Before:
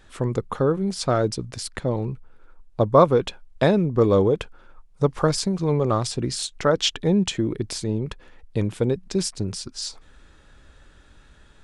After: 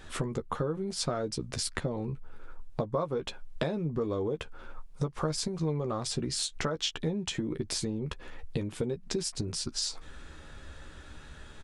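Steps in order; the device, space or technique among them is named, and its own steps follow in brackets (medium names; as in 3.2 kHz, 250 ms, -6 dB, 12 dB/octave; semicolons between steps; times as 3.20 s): serial compression, leveller first (compression 2:1, threshold -23 dBFS, peak gain reduction 8 dB; compression 4:1, threshold -35 dBFS, peak gain reduction 15.5 dB); doubling 13 ms -7 dB; trim +4 dB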